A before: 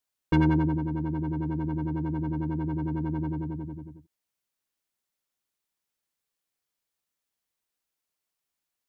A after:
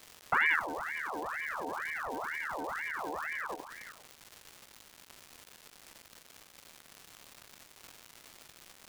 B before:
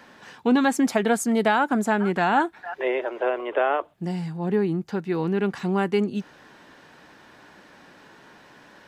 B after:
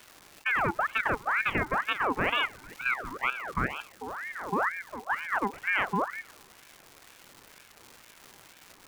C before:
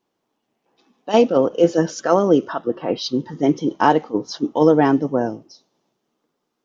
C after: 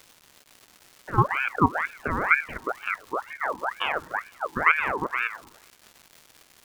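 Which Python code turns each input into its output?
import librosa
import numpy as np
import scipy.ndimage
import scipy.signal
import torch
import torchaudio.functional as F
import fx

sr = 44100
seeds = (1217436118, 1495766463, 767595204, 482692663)

y = scipy.signal.sosfilt(scipy.signal.butter(4, 1400.0, 'lowpass', fs=sr, output='sos'), x)
y = fx.peak_eq(y, sr, hz=360.0, db=5.5, octaves=0.21)
y = fx.notch(y, sr, hz=840.0, q=20.0)
y = fx.level_steps(y, sr, step_db=11)
y = fx.dmg_crackle(y, sr, seeds[0], per_s=570.0, level_db=-35.0)
y = fx.echo_feedback(y, sr, ms=104, feedback_pct=60, wet_db=-23)
y = fx.ring_lfo(y, sr, carrier_hz=1300.0, swing_pct=55, hz=2.1)
y = F.gain(torch.from_numpy(y), -1.5).numpy()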